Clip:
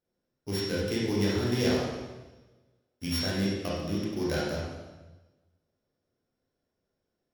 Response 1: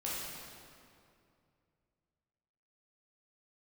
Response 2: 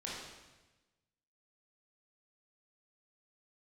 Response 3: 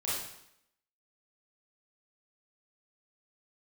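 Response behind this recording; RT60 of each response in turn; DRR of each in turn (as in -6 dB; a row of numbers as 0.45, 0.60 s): 2; 2.5, 1.1, 0.75 s; -7.5, -6.5, -8.5 dB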